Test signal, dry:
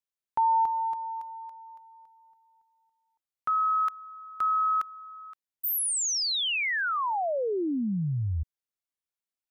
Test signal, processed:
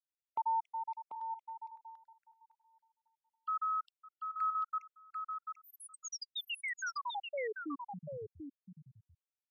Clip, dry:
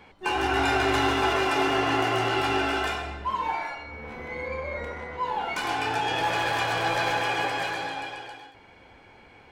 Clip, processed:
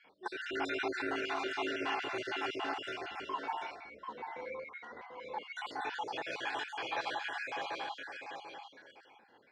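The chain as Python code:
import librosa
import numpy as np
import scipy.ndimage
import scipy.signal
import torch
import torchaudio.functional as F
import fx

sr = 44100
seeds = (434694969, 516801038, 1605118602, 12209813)

p1 = fx.spec_dropout(x, sr, seeds[0], share_pct=55)
p2 = fx.bandpass_edges(p1, sr, low_hz=270.0, high_hz=5600.0)
p3 = p2 + fx.echo_single(p2, sr, ms=740, db=-6.0, dry=0)
y = F.gain(torch.from_numpy(p3), -8.5).numpy()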